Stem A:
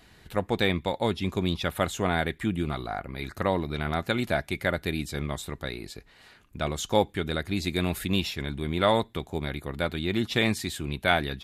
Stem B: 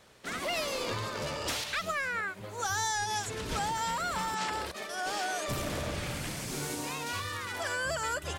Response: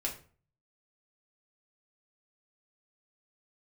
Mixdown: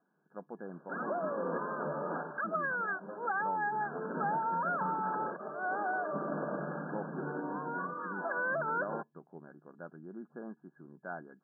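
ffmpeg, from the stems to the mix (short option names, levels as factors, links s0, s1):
-filter_complex "[0:a]volume=0.133[s0];[1:a]adelay=650,volume=1.06[s1];[s0][s1]amix=inputs=2:normalize=0,afftfilt=real='re*between(b*sr/4096,140,1700)':imag='im*between(b*sr/4096,140,1700)':win_size=4096:overlap=0.75"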